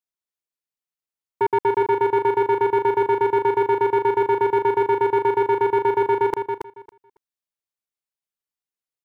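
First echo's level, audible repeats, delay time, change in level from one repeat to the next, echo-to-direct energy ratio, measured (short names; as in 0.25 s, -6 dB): -6.0 dB, 2, 0.277 s, -15.5 dB, -6.0 dB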